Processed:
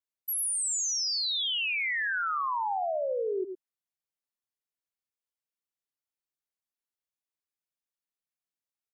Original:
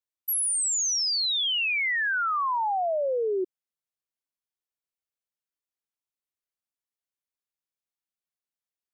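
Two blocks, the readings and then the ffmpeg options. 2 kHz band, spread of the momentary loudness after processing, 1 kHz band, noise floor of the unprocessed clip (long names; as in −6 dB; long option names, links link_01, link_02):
−4.0 dB, 6 LU, −4.0 dB, below −85 dBFS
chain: -af "aecho=1:1:86|105:0.158|0.376,volume=-4.5dB"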